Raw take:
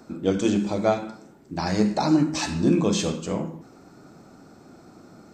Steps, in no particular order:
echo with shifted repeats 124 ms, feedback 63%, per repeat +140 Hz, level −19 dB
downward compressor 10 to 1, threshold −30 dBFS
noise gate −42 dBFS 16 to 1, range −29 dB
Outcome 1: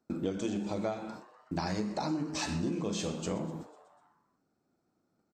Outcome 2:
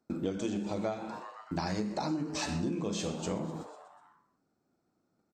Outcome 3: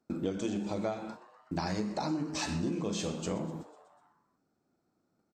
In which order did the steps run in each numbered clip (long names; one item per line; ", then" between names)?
noise gate, then downward compressor, then echo with shifted repeats
noise gate, then echo with shifted repeats, then downward compressor
downward compressor, then noise gate, then echo with shifted repeats